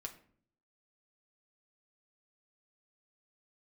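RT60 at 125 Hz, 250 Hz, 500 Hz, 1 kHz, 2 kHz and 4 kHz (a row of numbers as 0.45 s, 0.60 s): 0.85 s, 0.75 s, 0.60 s, 0.50 s, 0.45 s, 0.35 s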